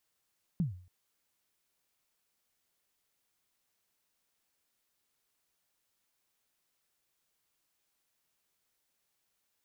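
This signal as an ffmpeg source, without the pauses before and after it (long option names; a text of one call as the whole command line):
ffmpeg -f lavfi -i "aevalsrc='0.0631*pow(10,-3*t/0.47)*sin(2*PI*(190*0.132/log(90/190)*(exp(log(90/190)*min(t,0.132)/0.132)-1)+90*max(t-0.132,0)))':duration=0.28:sample_rate=44100" out.wav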